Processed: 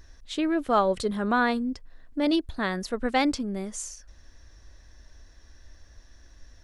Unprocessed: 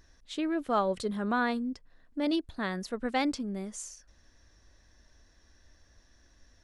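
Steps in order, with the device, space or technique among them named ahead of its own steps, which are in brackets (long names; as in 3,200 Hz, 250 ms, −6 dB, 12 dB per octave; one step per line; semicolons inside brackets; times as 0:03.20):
low shelf boost with a cut just above (low-shelf EQ 100 Hz +7 dB; parametric band 180 Hz −3.5 dB 1.1 octaves)
level +5.5 dB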